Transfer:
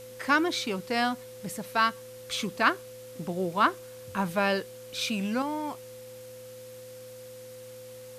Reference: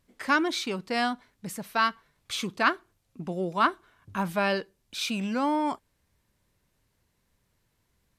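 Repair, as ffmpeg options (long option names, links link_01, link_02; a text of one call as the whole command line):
ffmpeg -i in.wav -af "bandreject=frequency=115.2:width_type=h:width=4,bandreject=frequency=230.4:width_type=h:width=4,bandreject=frequency=345.6:width_type=h:width=4,bandreject=frequency=510:width=30,afwtdn=0.0025,asetnsamples=nb_out_samples=441:pad=0,asendcmd='5.42 volume volume 6.5dB',volume=0dB" out.wav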